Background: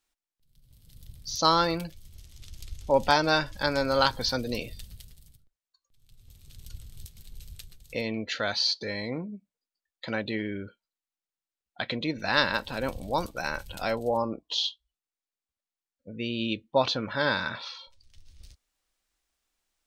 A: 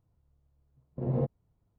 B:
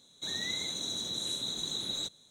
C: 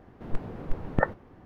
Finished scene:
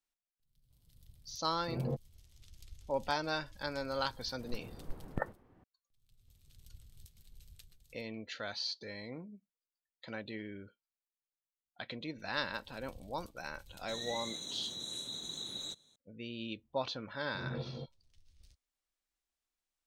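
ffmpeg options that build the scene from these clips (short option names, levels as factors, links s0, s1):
-filter_complex "[1:a]asplit=2[s0][s1];[0:a]volume=0.251[s2];[2:a]bandreject=f=4900:w=27[s3];[s1]aecho=1:1:224:0.596[s4];[s0]atrim=end=1.78,asetpts=PTS-STARTPTS,volume=0.447,afade=t=in:d=0.004:c=hsin,afade=t=out:st=1.776:d=0.004:c=hsin,adelay=700[s5];[3:a]atrim=end=1.45,asetpts=PTS-STARTPTS,volume=0.251,afade=t=in:d=0.004:c=hsin,afade=t=out:st=1.446:d=0.004:c=hsin,adelay=4190[s6];[s3]atrim=end=2.3,asetpts=PTS-STARTPTS,volume=0.447,afade=t=in:d=0.004:c=hsin,afade=t=out:st=2.296:d=0.004:c=hsin,adelay=13660[s7];[s4]atrim=end=1.78,asetpts=PTS-STARTPTS,volume=0.266,afade=t=in:d=0.004:c=hsin,afade=t=out:st=1.776:d=0.004:c=hsin,adelay=16370[s8];[s2][s5][s6][s7][s8]amix=inputs=5:normalize=0"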